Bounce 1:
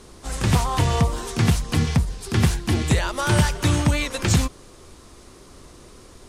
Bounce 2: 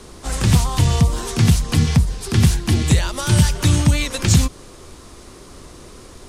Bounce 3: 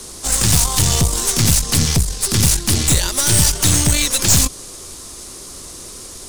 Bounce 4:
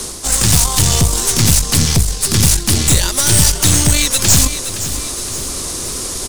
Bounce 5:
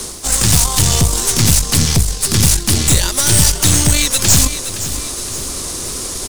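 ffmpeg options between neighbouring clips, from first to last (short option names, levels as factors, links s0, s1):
-filter_complex "[0:a]acrossover=split=260|3000[s0][s1][s2];[s1]acompressor=threshold=0.0251:ratio=6[s3];[s0][s3][s2]amix=inputs=3:normalize=0,volume=1.88"
-af "bass=f=250:g=-2,treble=f=4000:g=15,aeval=exprs='(tanh(4.47*val(0)+0.6)-tanh(0.6))/4.47':c=same,volume=1.58"
-af "aecho=1:1:517|1034|1551:0.158|0.0602|0.0229,areverse,acompressor=mode=upward:threshold=0.178:ratio=2.5,areverse,volume=1.33"
-af "aeval=exprs='sgn(val(0))*max(abs(val(0))-0.00841,0)':c=same"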